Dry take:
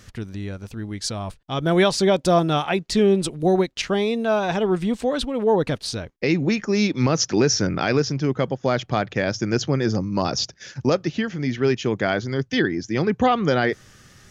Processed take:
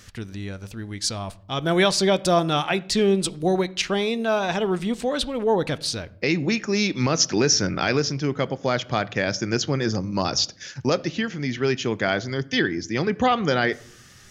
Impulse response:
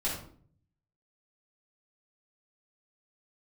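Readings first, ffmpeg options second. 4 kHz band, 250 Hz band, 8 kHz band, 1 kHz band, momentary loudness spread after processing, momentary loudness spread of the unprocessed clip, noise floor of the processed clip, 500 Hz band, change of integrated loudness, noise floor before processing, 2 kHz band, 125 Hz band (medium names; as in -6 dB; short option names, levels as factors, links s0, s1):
+2.5 dB, -2.5 dB, +3.0 dB, -1.0 dB, 8 LU, 10 LU, -48 dBFS, -2.0 dB, -1.0 dB, -52 dBFS, +1.0 dB, -3.0 dB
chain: -filter_complex "[0:a]tiltshelf=f=1300:g=-3,asplit=2[s0][s1];[1:a]atrim=start_sample=2205,lowpass=4900,adelay=9[s2];[s1][s2]afir=irnorm=-1:irlink=0,volume=0.0708[s3];[s0][s3]amix=inputs=2:normalize=0"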